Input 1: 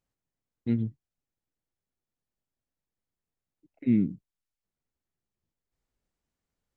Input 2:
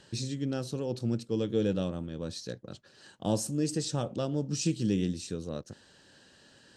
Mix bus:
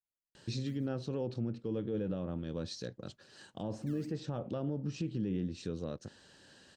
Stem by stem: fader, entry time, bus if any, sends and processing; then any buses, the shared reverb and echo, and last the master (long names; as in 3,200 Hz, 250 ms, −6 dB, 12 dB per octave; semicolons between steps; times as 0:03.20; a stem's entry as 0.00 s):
0:03.67 −22.5 dB → 0:04.26 −12 dB, 0.00 s, no send, downward compressor 3 to 1, threshold −30 dBFS, peak gain reduction 9 dB; sample-and-hold swept by an LFO 25×, swing 60% 3.6 Hz
−1.0 dB, 0.35 s, no send, treble cut that deepens with the level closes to 2,000 Hz, closed at −28 dBFS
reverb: not used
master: brickwall limiter −27 dBFS, peak gain reduction 11 dB